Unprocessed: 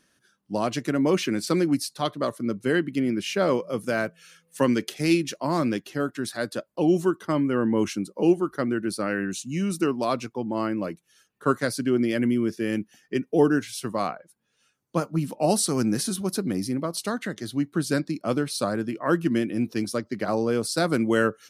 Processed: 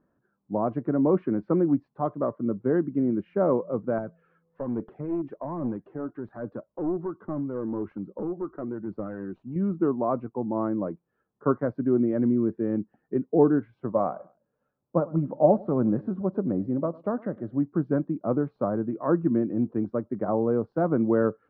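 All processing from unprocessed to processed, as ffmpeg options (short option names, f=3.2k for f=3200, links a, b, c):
-filter_complex "[0:a]asettb=1/sr,asplit=3[a][b][c];[a]atrim=end=3.984[d];[b]atrim=start=3.98:end=9.56,asetpts=PTS-STARTPTS,afade=t=in:d=0.004:c=qsin,afade=t=out:st=5.576:d=0.004:c=qsin,acompressor=threshold=-31dB:ratio=2:attack=3.2:release=140:knee=1:detection=peak,aphaser=in_gain=1:out_gain=1:delay=3.3:decay=0.36:speed=1.2:type=triangular,aeval=exprs='clip(val(0),-1,0.0473)':c=same[e];[c]atrim=start=9.556[f];[d][e]acrossfade=d=0.004:c1=hsin:c2=qsin[g];[g][f]acrossfade=d=0.004:c1=qsin:c2=hsin,asettb=1/sr,asplit=3[h][i][j];[h]atrim=end=13.824[k];[i]atrim=start=13.82:end=17.59,asetpts=PTS-STARTPTS,afade=t=in:d=0.004:c=qsin,afade=t=out:st=3.766:d=0.004:c=qsin,equalizer=f=570:w=6:g=8,aecho=1:1:104|208:0.0841|0.0261,atrim=end_sample=166257[l];[j]atrim=start=17.586[m];[k][l]acrossfade=d=0.004:c1=hsin:c2=qsin[n];[n][m]acrossfade=d=0.004:c1=qsin:c2=hsin,deesser=0.55,lowpass=f=1.1k:w=0.5412,lowpass=f=1.1k:w=1.3066"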